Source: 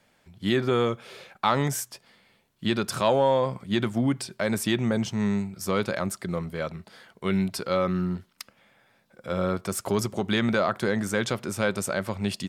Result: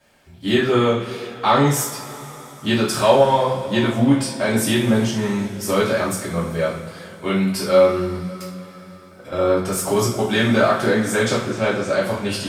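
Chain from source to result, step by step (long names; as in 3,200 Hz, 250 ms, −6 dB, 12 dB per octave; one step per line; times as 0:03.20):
0:08.28–0:09.32: downward compressor, threshold −42 dBFS, peak gain reduction 13.5 dB
0:11.37–0:11.88: high-frequency loss of the air 150 metres
coupled-rooms reverb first 0.43 s, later 4.4 s, from −21 dB, DRR −9 dB
level −1.5 dB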